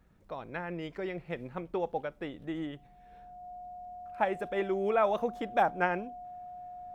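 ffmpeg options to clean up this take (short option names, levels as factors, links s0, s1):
-af "bandreject=f=720:w=30"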